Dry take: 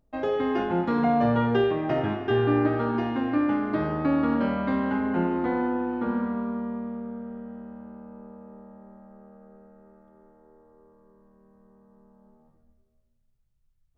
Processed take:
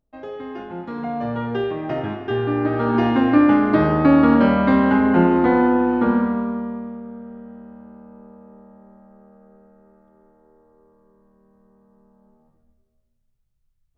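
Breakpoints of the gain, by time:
0.73 s -7 dB
1.85 s +0.5 dB
2.57 s +0.5 dB
3.06 s +10 dB
6.04 s +10 dB
7.01 s +0.5 dB

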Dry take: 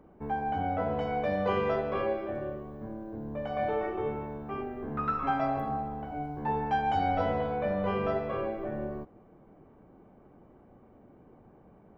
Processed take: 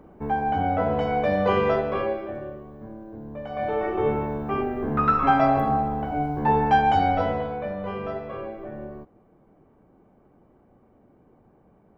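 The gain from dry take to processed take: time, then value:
1.71 s +7 dB
2.5 s 0 dB
3.47 s 0 dB
4.1 s +10 dB
6.77 s +10 dB
7.76 s -1.5 dB

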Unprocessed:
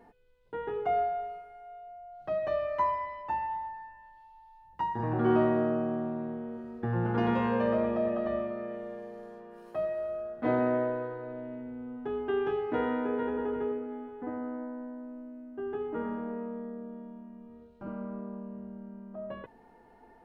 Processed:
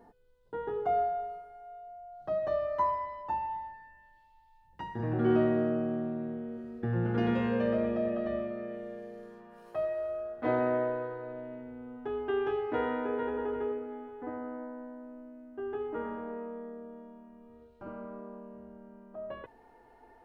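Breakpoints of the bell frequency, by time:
bell -10.5 dB 0.67 oct
3.23 s 2400 Hz
3.79 s 970 Hz
9.17 s 970 Hz
9.85 s 190 Hz

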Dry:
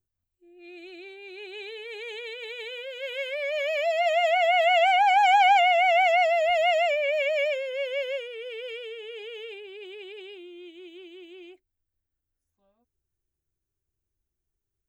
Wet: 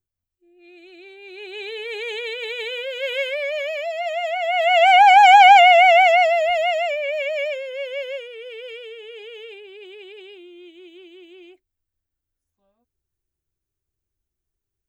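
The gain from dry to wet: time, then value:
0.86 s -2 dB
1.81 s +8.5 dB
3.17 s +8.5 dB
3.9 s -2 dB
4.41 s -2 dB
4.97 s +9.5 dB
5.79 s +9.5 dB
6.77 s +1 dB

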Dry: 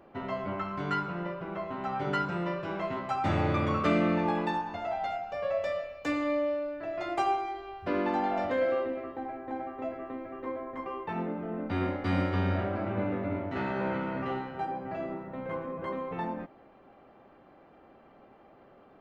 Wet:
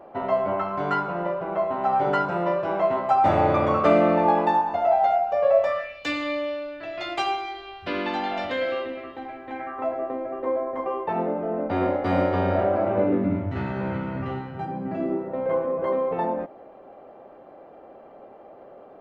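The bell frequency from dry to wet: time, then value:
bell +14 dB 1.6 oct
5.59 s 690 Hz
6.01 s 3500 Hz
9.44 s 3500 Hz
10.01 s 610 Hz
12.96 s 610 Hz
13.53 s 93 Hz
14.46 s 93 Hz
15.4 s 570 Hz

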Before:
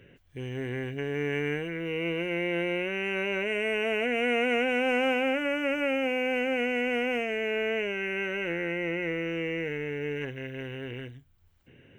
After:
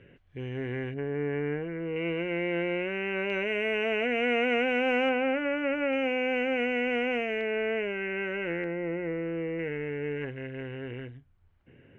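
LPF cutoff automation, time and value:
2900 Hz
from 0.94 s 1400 Hz
from 1.96 s 2600 Hz
from 3.3 s 4200 Hz
from 5.09 s 2300 Hz
from 5.93 s 3900 Hz
from 7.41 s 2400 Hz
from 8.64 s 1300 Hz
from 9.59 s 2200 Hz

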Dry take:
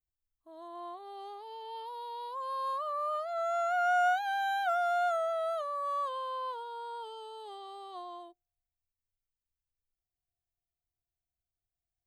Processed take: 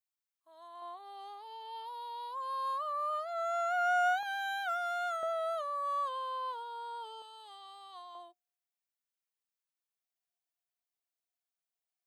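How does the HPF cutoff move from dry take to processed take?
970 Hz
from 0.82 s 680 Hz
from 4.23 s 1100 Hz
from 5.23 s 590 Hz
from 7.22 s 1100 Hz
from 8.15 s 650 Hz

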